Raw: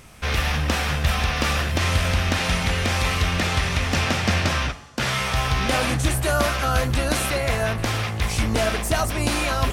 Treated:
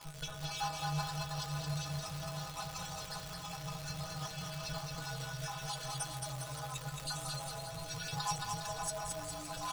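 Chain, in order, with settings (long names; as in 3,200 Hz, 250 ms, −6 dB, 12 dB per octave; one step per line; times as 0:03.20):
time-frequency cells dropped at random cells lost 32%
low-pass filter 9,300 Hz 24 dB per octave
comb filter 6.2 ms, depth 70%
compressor whose output falls as the input rises −33 dBFS, ratio −1
phaser with its sweep stopped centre 850 Hz, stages 4
stiff-string resonator 150 Hz, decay 0.22 s, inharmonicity 0.008
surface crackle 240 per second −38 dBFS
bouncing-ball delay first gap 220 ms, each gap 0.85×, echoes 5
on a send at −13.5 dB: convolution reverb RT60 0.55 s, pre-delay 3 ms
on the sum: level +2 dB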